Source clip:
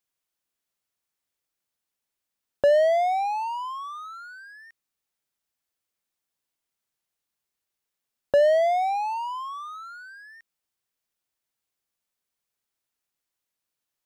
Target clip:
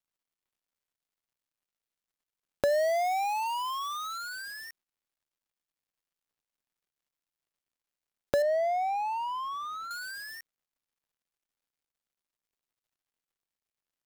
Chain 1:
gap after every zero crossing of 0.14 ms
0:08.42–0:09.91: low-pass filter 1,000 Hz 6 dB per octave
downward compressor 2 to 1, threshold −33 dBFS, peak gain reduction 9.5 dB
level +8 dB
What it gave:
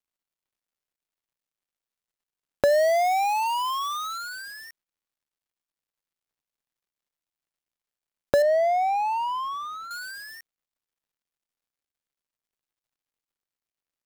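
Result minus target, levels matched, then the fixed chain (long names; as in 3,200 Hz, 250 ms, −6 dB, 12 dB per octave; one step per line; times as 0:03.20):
downward compressor: peak gain reduction −6 dB
gap after every zero crossing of 0.14 ms
0:08.42–0:09.91: low-pass filter 1,000 Hz 6 dB per octave
downward compressor 2 to 1, threshold −45 dBFS, peak gain reduction 15.5 dB
level +8 dB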